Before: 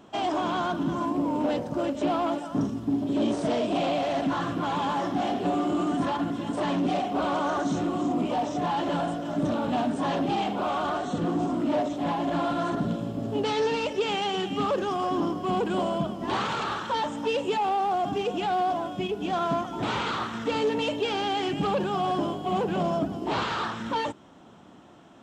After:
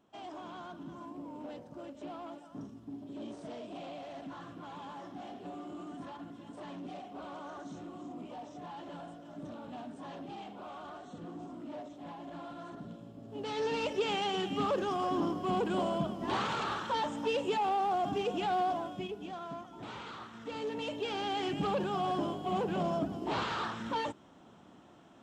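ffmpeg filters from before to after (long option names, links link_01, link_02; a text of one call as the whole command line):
ffmpeg -i in.wav -af "volume=5dB,afade=type=in:start_time=13.28:duration=0.57:silence=0.223872,afade=type=out:start_time=18.61:duration=0.77:silence=0.281838,afade=type=in:start_time=20.34:duration=1.14:silence=0.316228" out.wav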